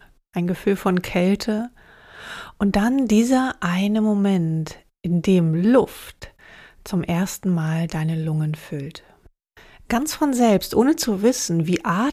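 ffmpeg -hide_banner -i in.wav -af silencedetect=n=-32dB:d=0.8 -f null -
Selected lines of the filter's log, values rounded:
silence_start: 8.97
silence_end: 9.90 | silence_duration: 0.93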